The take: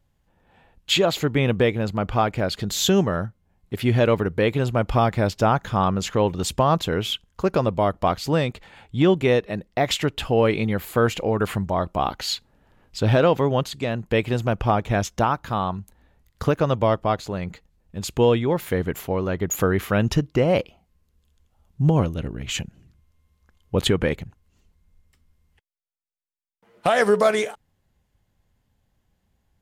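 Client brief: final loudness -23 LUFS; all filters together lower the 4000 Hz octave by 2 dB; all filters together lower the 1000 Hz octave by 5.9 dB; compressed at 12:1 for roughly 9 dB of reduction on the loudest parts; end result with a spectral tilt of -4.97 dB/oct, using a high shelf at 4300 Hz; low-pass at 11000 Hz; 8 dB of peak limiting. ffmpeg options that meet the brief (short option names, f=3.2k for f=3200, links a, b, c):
-af "lowpass=11k,equalizer=f=1k:t=o:g=-8.5,equalizer=f=4k:t=o:g=-4.5,highshelf=f=4.3k:g=5,acompressor=threshold=-23dB:ratio=12,volume=8.5dB,alimiter=limit=-11.5dB:level=0:latency=1"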